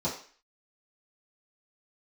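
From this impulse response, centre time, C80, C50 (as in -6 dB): 26 ms, 11.5 dB, 7.5 dB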